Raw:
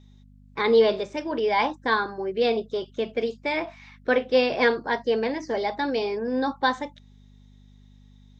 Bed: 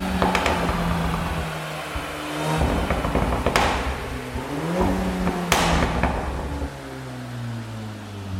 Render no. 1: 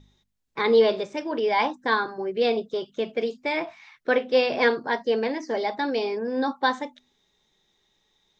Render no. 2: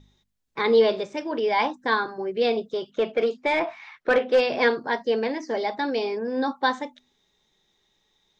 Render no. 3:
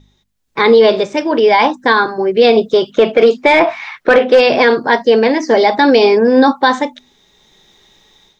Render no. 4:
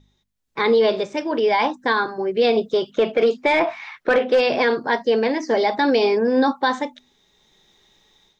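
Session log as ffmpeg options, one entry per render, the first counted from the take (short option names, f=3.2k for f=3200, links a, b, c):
-af "bandreject=f=50:t=h:w=4,bandreject=f=100:t=h:w=4,bandreject=f=150:t=h:w=4,bandreject=f=200:t=h:w=4,bandreject=f=250:t=h:w=4"
-filter_complex "[0:a]asplit=3[a][b][c];[a]afade=t=out:st=2.9:d=0.02[d];[b]asplit=2[e][f];[f]highpass=f=720:p=1,volume=16dB,asoftclip=type=tanh:threshold=-10dB[g];[e][g]amix=inputs=2:normalize=0,lowpass=f=1.4k:p=1,volume=-6dB,afade=t=in:st=2.9:d=0.02,afade=t=out:st=4.39:d=0.02[h];[c]afade=t=in:st=4.39:d=0.02[i];[d][h][i]amix=inputs=3:normalize=0"
-af "dynaudnorm=f=330:g=3:m=13dB,alimiter=level_in=6.5dB:limit=-1dB:release=50:level=0:latency=1"
-af "volume=-8.5dB"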